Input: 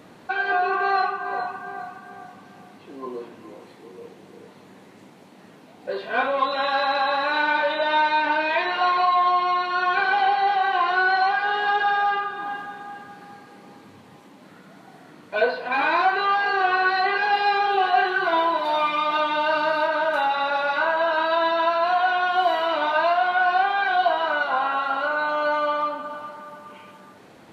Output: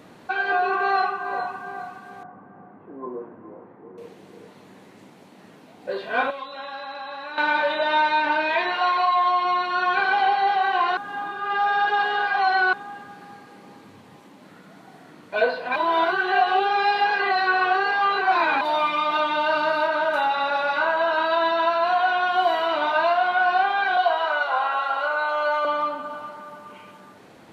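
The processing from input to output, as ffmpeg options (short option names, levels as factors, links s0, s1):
-filter_complex "[0:a]asettb=1/sr,asplit=3[s0][s1][s2];[s0]atrim=end=2.234[s3];[s1]atrim=start=2.23:end=3.98,asetpts=PTS-STARTPTS,afade=t=in:d=0.004:c=qsin,afade=t=out:st=1.746:d=0.004:c=qsin,lowpass=f=1500:w=0.5412,lowpass=f=1500:w=1.3066[s4];[s2]atrim=start=3.976[s5];[s3][s4]acrossfade=d=0.004:c1=hsin:c2=qsin[s6];[s6][s5]acrossfade=d=0.004:c1=qsin:c2=hsin,asettb=1/sr,asplit=3[s7][s8][s9];[s7]atrim=end=6.304[s10];[s8]atrim=start=6.3:end=7.38,asetpts=PTS-STARTPTS,afade=t=in:d=0.004:c=qsin,afade=t=out:st=1.076:d=0.004:c=qsin,acrossover=split=280|2100[s11][s12][s13];[s11]acompressor=threshold=0.00158:ratio=4[s14];[s12]acompressor=threshold=0.0158:ratio=4[s15];[s13]acompressor=threshold=0.00562:ratio=4[s16];[s14][s15][s16]amix=inputs=3:normalize=0[s17];[s9]atrim=start=7.376[s18];[s10][s17]acrossfade=d=0.004:c1=hsin:c2=qsin[s19];[s19][s18]acrossfade=d=0.004:c1=qsin:c2=hsin,asettb=1/sr,asplit=3[s20][s21][s22];[s20]atrim=end=8.754[s23];[s21]atrim=start=8.75:end=9.45,asetpts=PTS-STARTPTS,afade=t=in:d=0.004:c=qsin,afade=t=out:st=0.696:d=0.004:c=qsin,lowshelf=f=240:g=-11.5[s24];[s22]atrim=start=9.446[s25];[s23][s24]acrossfade=d=0.004:c1=hsin:c2=qsin[s26];[s26][s25]acrossfade=d=0.004:c1=qsin:c2=hsin,asettb=1/sr,asplit=3[s27][s28][s29];[s27]atrim=end=23.974[s30];[s28]atrim=start=23.97:end=25.65,asetpts=PTS-STARTPTS,afade=t=in:d=0.004:c=qsin,afade=t=out:st=1.676:d=0.004:c=qsin,highpass=f=400:w=0.5412,highpass=f=400:w=1.3066[s31];[s29]atrim=start=25.646[s32];[s30][s31]acrossfade=d=0.004:c1=hsin:c2=qsin[s33];[s33][s32]acrossfade=d=0.004:c1=qsin:c2=hsin,asplit=5[s34][s35][s36][s37][s38];[s34]atrim=end=10.972[s39];[s35]atrim=start=10.968:end=12.732,asetpts=PTS-STARTPTS,areverse[s40];[s36]atrim=start=12.728:end=15.762[s41];[s37]atrim=start=15.758:end=18.612,asetpts=PTS-STARTPTS,areverse[s42];[s38]atrim=start=18.608[s43];[s39][s40]acrossfade=d=0.004:c1=hsin:c2=hsin[s44];[s44][s41]acrossfade=d=0.004:c1=hsin:c2=hsin[s45];[s45][s42]acrossfade=d=0.004:c1=hsin:c2=hsin[s46];[s46][s43]acrossfade=d=0.004:c1=hsin:c2=hsin"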